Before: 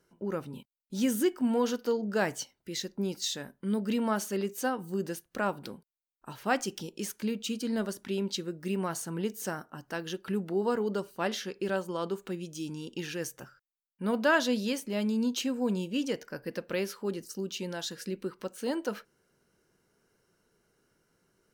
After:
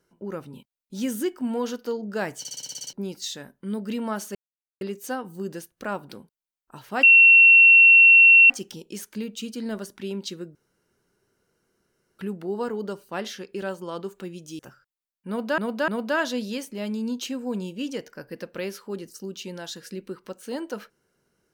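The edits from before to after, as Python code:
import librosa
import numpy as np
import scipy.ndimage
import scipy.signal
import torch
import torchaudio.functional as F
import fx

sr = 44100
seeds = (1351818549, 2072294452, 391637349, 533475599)

y = fx.edit(x, sr, fx.stutter_over(start_s=2.39, slice_s=0.06, count=9),
    fx.insert_silence(at_s=4.35, length_s=0.46),
    fx.insert_tone(at_s=6.57, length_s=1.47, hz=2720.0, db=-9.0),
    fx.room_tone_fill(start_s=8.62, length_s=1.64),
    fx.cut(start_s=12.66, length_s=0.68),
    fx.repeat(start_s=14.03, length_s=0.3, count=3), tone=tone)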